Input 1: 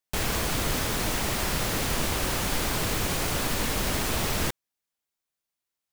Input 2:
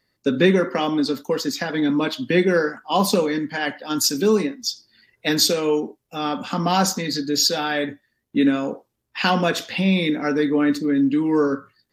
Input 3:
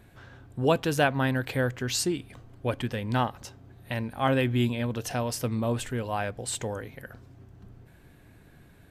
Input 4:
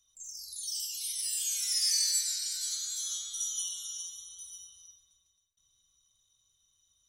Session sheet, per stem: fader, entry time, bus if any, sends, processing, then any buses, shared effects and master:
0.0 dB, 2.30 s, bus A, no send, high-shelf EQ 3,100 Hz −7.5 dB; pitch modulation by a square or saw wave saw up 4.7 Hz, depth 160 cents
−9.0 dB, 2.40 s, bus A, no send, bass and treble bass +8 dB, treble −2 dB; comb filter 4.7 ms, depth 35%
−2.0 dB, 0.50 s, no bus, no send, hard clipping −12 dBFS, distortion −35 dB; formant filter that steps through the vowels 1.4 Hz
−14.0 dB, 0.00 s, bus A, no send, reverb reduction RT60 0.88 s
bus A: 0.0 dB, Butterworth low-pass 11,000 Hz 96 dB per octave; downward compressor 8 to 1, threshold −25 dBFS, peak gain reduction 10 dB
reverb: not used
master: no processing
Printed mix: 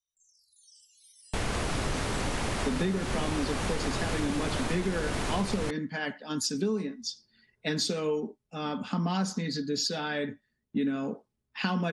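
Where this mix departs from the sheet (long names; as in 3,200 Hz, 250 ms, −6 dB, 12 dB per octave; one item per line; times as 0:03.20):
stem 1: entry 2.30 s → 1.20 s
stem 3: muted
stem 4 −14.0 dB → −20.5 dB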